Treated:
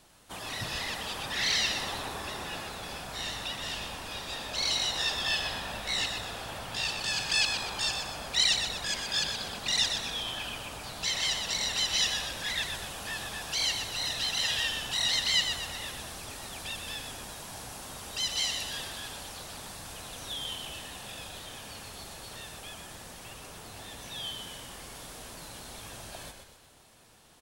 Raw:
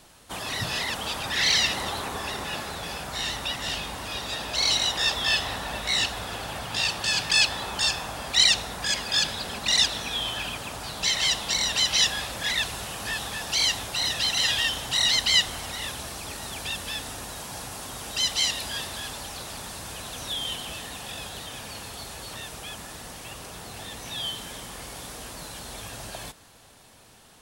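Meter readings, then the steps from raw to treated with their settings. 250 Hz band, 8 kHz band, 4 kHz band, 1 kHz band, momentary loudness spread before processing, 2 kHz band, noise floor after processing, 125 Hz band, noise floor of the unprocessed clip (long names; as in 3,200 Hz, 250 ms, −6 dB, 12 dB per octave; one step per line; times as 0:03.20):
−5.5 dB, −5.5 dB, −5.5 dB, −5.5 dB, 17 LU, −5.5 dB, −49 dBFS, −5.5 dB, −50 dBFS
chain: surface crackle 33 per second −46 dBFS
echo with shifted repeats 123 ms, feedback 48%, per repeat −62 Hz, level −6.5 dB
level −6.5 dB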